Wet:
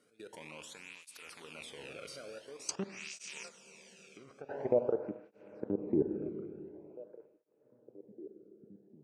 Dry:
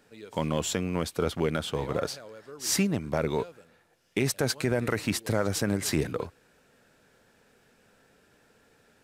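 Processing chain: rattle on loud lows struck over -39 dBFS, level -18 dBFS; low-pass sweep 10 kHz -> 380 Hz, 2.51–5.14 s; level held to a coarse grid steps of 23 dB; band-stop 7.4 kHz, Q 14; Schroeder reverb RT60 3 s, combs from 26 ms, DRR 7 dB; low-pass that closes with the level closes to 1.1 kHz, closed at -23 dBFS; 3.48–4.49 s: compression 3:1, threshold -52 dBFS, peak gain reduction 22 dB; on a send: repeats whose band climbs or falls 750 ms, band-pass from 3.1 kHz, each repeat -1.4 oct, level -12 dB; on the sum: cancelling through-zero flanger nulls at 0.47 Hz, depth 1.2 ms

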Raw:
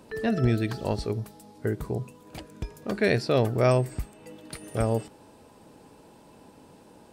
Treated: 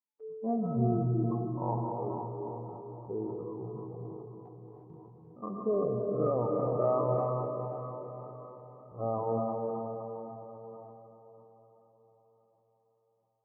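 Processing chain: expander on every frequency bin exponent 2; de-hum 138.7 Hz, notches 9; reverb removal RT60 1.4 s; FFT band-pass 110–1300 Hz; gate with hold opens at -54 dBFS; bass shelf 480 Hz -8.5 dB; compression 6:1, threshold -33 dBFS, peak gain reduction 10 dB; tempo 0.53×; on a send: echo that smears into a reverb 528 ms, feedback 46%, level -6.5 dB; on the sum: gated-style reverb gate 390 ms rising, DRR 0.5 dB; decay stretcher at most 23 dB/s; trim +5.5 dB

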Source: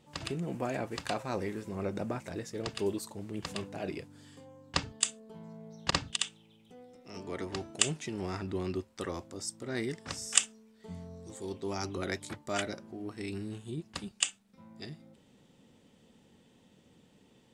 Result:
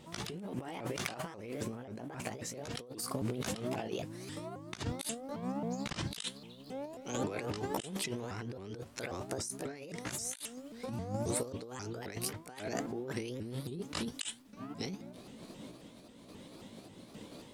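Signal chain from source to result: sawtooth pitch modulation +5.5 st, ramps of 268 ms; compressor with a negative ratio -46 dBFS, ratio -1; random-step tremolo; trim +8 dB

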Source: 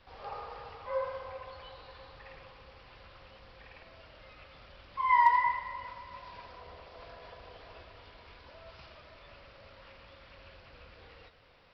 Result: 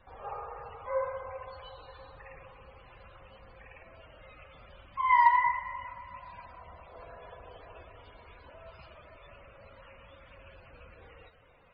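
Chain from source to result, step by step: loudest bins only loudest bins 64; 4.86–6.89 s: peaking EQ 440 Hz -13 dB 0.48 oct; trim +2 dB

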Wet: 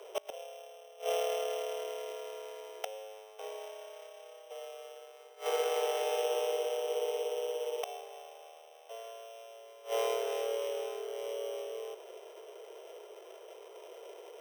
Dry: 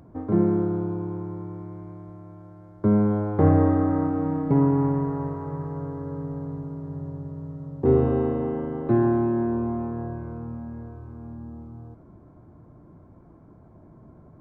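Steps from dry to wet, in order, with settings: sorted samples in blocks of 16 samples; frequency shift +330 Hz; inverted gate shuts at -19 dBFS, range -26 dB

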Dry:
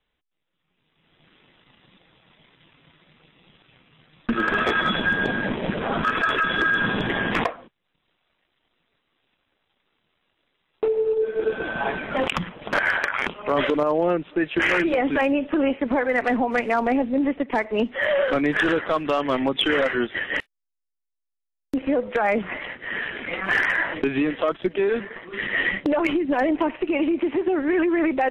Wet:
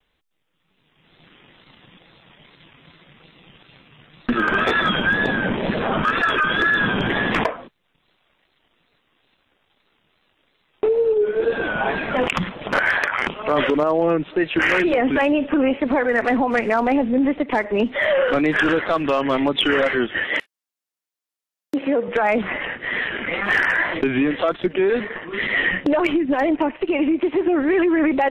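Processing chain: wow and flutter 86 cents; in parallel at +1.5 dB: peak limiter -23.5 dBFS, peak gain reduction 11.5 dB; 20.24–22.08 s: on the sum: Bessel high-pass 210 Hz, order 2; 26.07–27.36 s: upward expansion 1.5:1, over -32 dBFS

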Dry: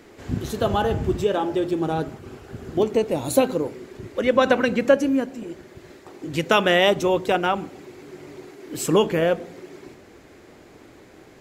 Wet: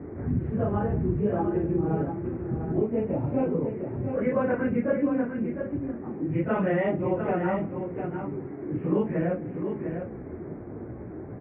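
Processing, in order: phase randomisation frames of 100 ms; steep low-pass 2.3 kHz 48 dB/octave; peaking EQ 130 Hz +14 dB 2.9 oct; level-controlled noise filter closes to 1.1 kHz, open at -10.5 dBFS; compression 2:1, threshold -39 dBFS, peak gain reduction 17.5 dB; delay 702 ms -7.5 dB; trim +3 dB

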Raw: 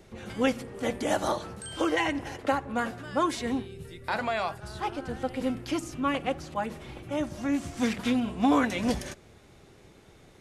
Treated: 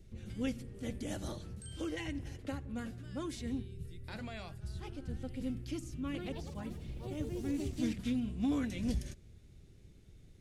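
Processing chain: amplifier tone stack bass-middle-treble 10-0-1; 5.94–8.24 s: ever faster or slower copies 160 ms, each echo +4 st, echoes 3, each echo -6 dB; trim +10.5 dB

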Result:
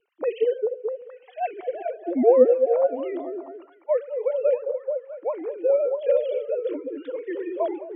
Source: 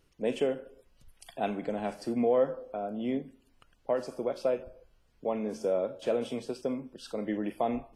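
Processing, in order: formants replaced by sine waves; repeats whose band climbs or falls 215 ms, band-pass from 360 Hz, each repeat 0.7 oct, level -2.5 dB; vibrato 5.7 Hz 60 cents; trim +6.5 dB

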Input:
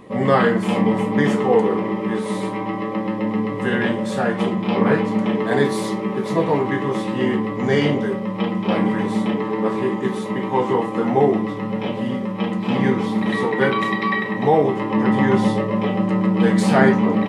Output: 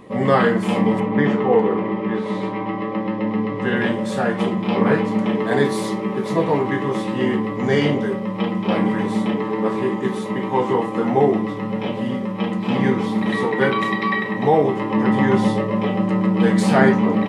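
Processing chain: 0.99–3.75 s: low-pass 2.8 kHz -> 5.2 kHz 12 dB/octave

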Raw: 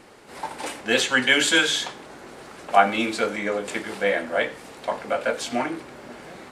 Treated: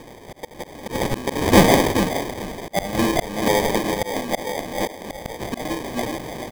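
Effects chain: feedback delay 427 ms, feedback 24%, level -9 dB; slow attack 338 ms; sample-and-hold 32×; trim +8 dB

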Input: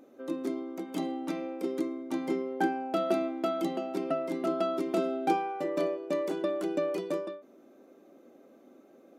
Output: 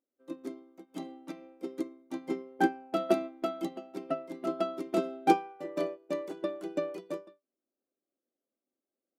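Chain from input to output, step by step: upward expansion 2.5:1, over -50 dBFS; trim +5.5 dB

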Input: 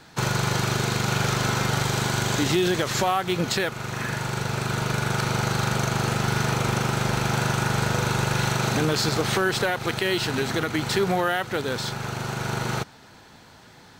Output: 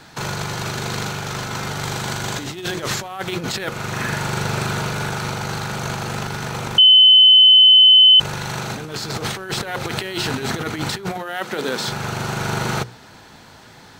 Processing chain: 11.17–11.87 s: high-pass 170 Hz 24 dB/octave; hum notches 60/120/180/240/300/360/420/480/540 Hz; compressor with a negative ratio -27 dBFS, ratio -0.5; 6.78–8.20 s: bleep 3.04 kHz -8.5 dBFS; trim +2.5 dB

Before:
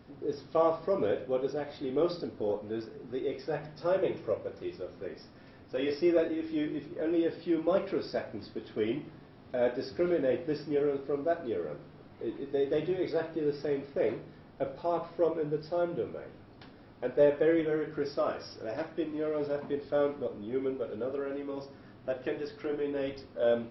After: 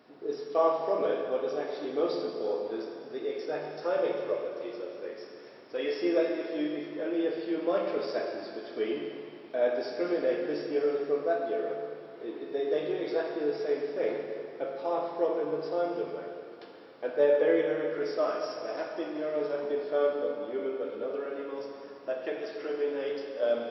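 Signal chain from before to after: high-pass 350 Hz 12 dB/octave; plate-style reverb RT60 2.5 s, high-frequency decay 0.95×, DRR 1.5 dB

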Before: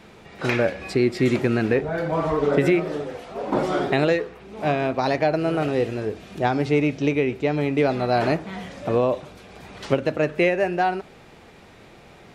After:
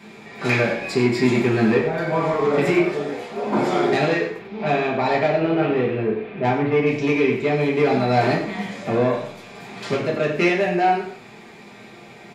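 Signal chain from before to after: 4.38–6.85 s: low-pass 4.8 kHz -> 2.3 kHz 24 dB/octave; saturation -16 dBFS, distortion -15 dB; delay 94 ms -11 dB; reverberation RT60 0.50 s, pre-delay 3 ms, DRR -3.5 dB

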